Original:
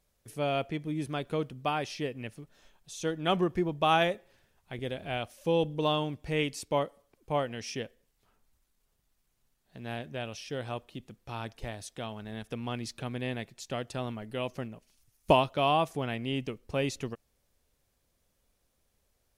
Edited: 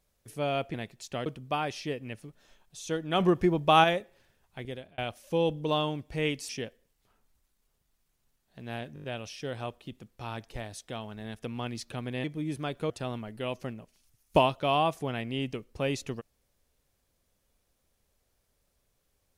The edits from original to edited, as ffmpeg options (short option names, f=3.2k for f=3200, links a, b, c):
-filter_complex "[0:a]asplit=14[a][b][c][d][e][f][g][h][i][j][k][l][m][n];[a]atrim=end=0.742[o];[b]atrim=start=13.318:end=13.842[p];[c]atrim=start=1.398:end=3.342[q];[d]atrim=start=3.338:end=3.982,asetpts=PTS-STARTPTS,volume=4.5dB[r];[e]atrim=start=3.978:end=5.12,asetpts=PTS-STARTPTS,afade=t=out:st=0.752:d=0.39[s];[f]atrim=start=5.12:end=6.632,asetpts=PTS-STARTPTS,afade=t=in:d=0.004:c=hsin[t];[g]atrim=start=7.668:end=10.142[u];[h]atrim=start=10.118:end=10.142[v];[i]atrim=start=10.118:end=10.142[w];[j]atrim=start=10.118:end=10.142[x];[k]atrim=start=10.118:end=10.142[y];[l]atrim=start=10.118:end=13.322[z];[m]atrim=start=0.738:end=1.402[aa];[n]atrim=start=13.838[ab];[o][p]acrossfade=d=0.004:c1=hsin:c2=hsin[ac];[ac][q]acrossfade=d=0.004:c1=hsin:c2=hsin[ad];[ad][r]acrossfade=d=0.004:c1=hsin:c2=hsin[ae];[s][t]concat=n=2:v=0:a=1[af];[ae][af]acrossfade=d=0.004:c1=hsin:c2=hsin[ag];[ag][u]acrossfade=d=0.004:c1=hsin:c2=hsin[ah];[ah][v]acrossfade=d=0.004:c1=hsin:c2=hsin[ai];[ai][w]acrossfade=d=0.004:c1=hsin:c2=hsin[aj];[aj][x]acrossfade=d=0.004:c1=hsin:c2=hsin[ak];[ak][y]acrossfade=d=0.004:c1=hsin:c2=hsin[al];[al][z]acrossfade=d=0.004:c1=hsin:c2=hsin[am];[am][aa]acrossfade=d=0.004:c1=hsin:c2=hsin[an];[an][ab]acrossfade=d=0.004:c1=hsin:c2=hsin"